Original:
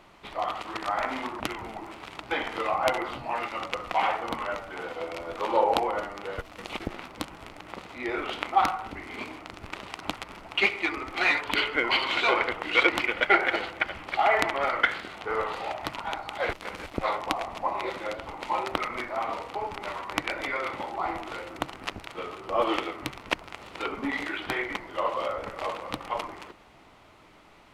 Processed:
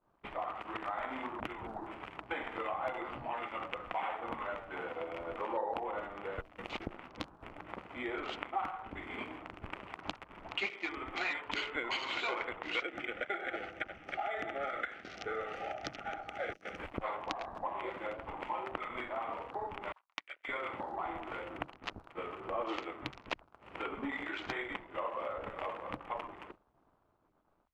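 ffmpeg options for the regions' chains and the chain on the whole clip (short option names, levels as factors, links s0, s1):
-filter_complex "[0:a]asettb=1/sr,asplit=3[s0][s1][s2];[s0]atrim=end=12.804[s3];[s1]atrim=start=12.8:end=16.77,asetpts=PTS-STARTPTS,afade=t=in:d=0.004:c=qsin,afade=t=out:st=3.966:d=0.004:c=qsin,asuperstop=centerf=1000:order=12:qfactor=2.9,equalizer=f=5900:t=o:w=0.42:g=15,acrossover=split=97|2000[s4][s5][s6];[s4]acompressor=threshold=0.00178:ratio=4[s7];[s5]acompressor=threshold=0.0631:ratio=4[s8];[s6]acompressor=threshold=0.0141:ratio=4[s9];[s7][s8][s9]amix=inputs=3:normalize=0[s10];[s2]atrim=start=16.766[s11];[s3][s10]acrossfade=d=0.004:c1=hsin:c2=qsin[s12];[s12][s11]acrossfade=d=0.004:c1=qsin:c2=hsin,asettb=1/sr,asplit=3[s13][s14][s15];[s13]atrim=end=19.924[s16];[s14]atrim=start=19.92:end=20.49,asetpts=PTS-STARTPTS,afade=t=in:d=0.004:c=qsin,afade=t=out:st=0.566:d=0.004:c=qsin,bandreject=f=50:t=h:w=6,bandreject=f=100:t=h:w=6,bandreject=f=150:t=h:w=6,bandreject=f=200:t=h:w=6,bandreject=f=250:t=h:w=6,bandreject=f=300:t=h:w=6,bandreject=f=350:t=h:w=6,bandreject=f=400:t=h:w=6,bandreject=f=450:t=h:w=6,agate=range=0.0224:threshold=0.0631:ratio=3:release=100:detection=peak,tiltshelf=f=860:g=-9[s17];[s15]atrim=start=20.486[s18];[s16][s17]acrossfade=d=0.004:c1=hsin:c2=qsin[s19];[s19][s18]acrossfade=d=0.004:c1=qsin:c2=hsin,acompressor=threshold=0.00631:ratio=2.5,afwtdn=0.00316,agate=range=0.0224:threshold=0.00631:ratio=3:detection=peak,volume=1.41"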